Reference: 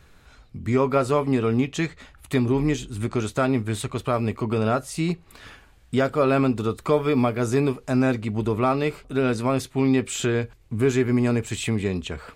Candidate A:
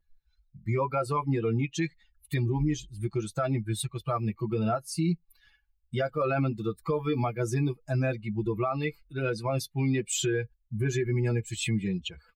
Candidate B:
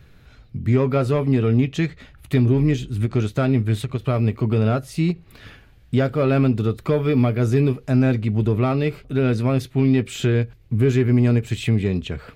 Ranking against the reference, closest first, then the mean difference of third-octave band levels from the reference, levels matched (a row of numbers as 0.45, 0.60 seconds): B, A; 4.0, 7.5 decibels